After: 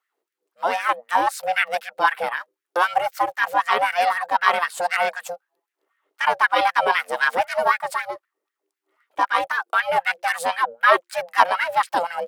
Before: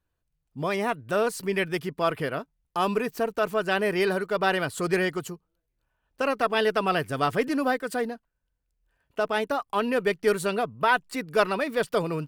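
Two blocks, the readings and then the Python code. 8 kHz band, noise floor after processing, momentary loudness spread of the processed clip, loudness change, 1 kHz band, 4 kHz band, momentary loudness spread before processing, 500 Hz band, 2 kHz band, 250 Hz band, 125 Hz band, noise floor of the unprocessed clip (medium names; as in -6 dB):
+3.0 dB, -85 dBFS, 9 LU, +5.0 dB, +9.5 dB, +4.5 dB, 7 LU, -1.5 dB, +8.0 dB, -12.0 dB, under -15 dB, -79 dBFS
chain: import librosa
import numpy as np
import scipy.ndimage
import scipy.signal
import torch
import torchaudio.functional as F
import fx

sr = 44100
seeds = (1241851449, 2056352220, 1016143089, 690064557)

y = fx.low_shelf(x, sr, hz=230.0, db=-3.5)
y = y * np.sin(2.0 * np.pi * 350.0 * np.arange(len(y)) / sr)
y = fx.filter_lfo_highpass(y, sr, shape='sine', hz=3.9, low_hz=460.0, high_hz=1800.0, q=3.1)
y = y * librosa.db_to_amplitude(5.5)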